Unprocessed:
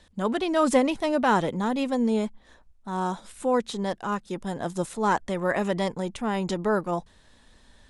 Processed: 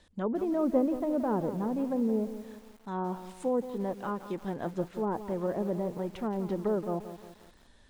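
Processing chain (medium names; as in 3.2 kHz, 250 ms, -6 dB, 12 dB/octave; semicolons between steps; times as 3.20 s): low-pass that closes with the level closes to 640 Hz, closed at -22 dBFS; peaking EQ 360 Hz +3 dB 1 oct; bit-crushed delay 174 ms, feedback 55%, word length 7-bit, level -11.5 dB; trim -5.5 dB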